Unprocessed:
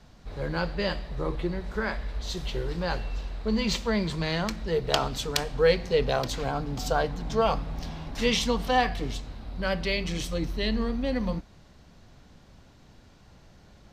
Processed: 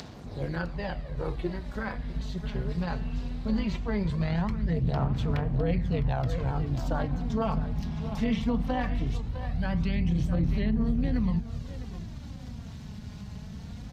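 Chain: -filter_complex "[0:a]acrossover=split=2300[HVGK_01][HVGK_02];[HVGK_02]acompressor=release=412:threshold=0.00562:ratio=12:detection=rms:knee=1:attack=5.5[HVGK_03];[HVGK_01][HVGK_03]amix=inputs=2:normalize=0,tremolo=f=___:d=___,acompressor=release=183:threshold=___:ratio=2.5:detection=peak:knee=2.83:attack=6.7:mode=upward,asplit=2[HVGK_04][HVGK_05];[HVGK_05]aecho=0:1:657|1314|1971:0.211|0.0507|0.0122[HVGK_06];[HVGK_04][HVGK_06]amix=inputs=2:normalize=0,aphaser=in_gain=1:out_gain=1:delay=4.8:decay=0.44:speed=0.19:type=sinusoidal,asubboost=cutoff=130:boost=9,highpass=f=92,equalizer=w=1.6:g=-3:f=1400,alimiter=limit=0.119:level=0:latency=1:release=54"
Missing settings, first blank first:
200, 0.667, 0.0178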